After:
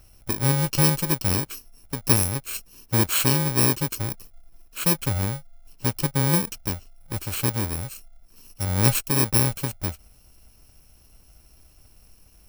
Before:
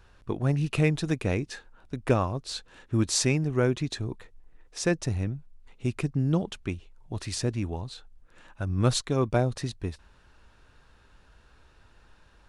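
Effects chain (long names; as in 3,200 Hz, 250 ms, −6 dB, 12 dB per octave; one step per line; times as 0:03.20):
samples in bit-reversed order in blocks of 64 samples
level +4 dB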